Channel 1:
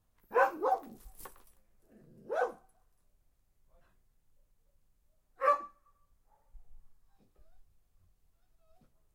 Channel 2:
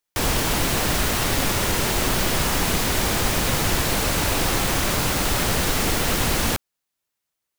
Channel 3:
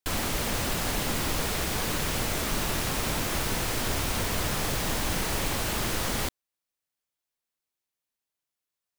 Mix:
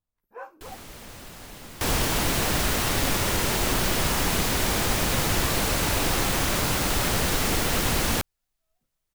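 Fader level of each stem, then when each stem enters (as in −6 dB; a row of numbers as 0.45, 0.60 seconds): −13.5, −2.5, −14.0 decibels; 0.00, 1.65, 0.55 seconds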